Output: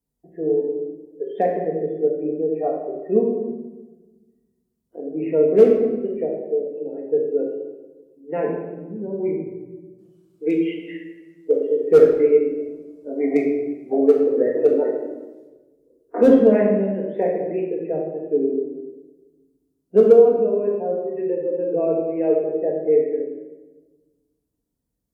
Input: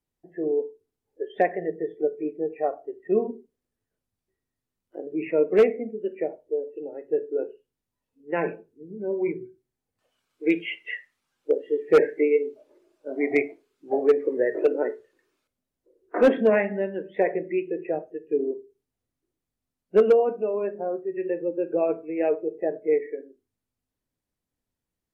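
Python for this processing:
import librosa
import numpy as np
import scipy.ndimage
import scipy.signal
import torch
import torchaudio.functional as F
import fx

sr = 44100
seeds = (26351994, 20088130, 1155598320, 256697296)

y = scipy.signal.sosfilt(scipy.signal.butter(2, 40.0, 'highpass', fs=sr, output='sos'), x)
y = fx.peak_eq(y, sr, hz=2100.0, db=-14.5, octaves=2.3)
y = fx.room_shoebox(y, sr, seeds[0], volume_m3=730.0, walls='mixed', distance_m=1.7)
y = y * librosa.db_to_amplitude(3.5)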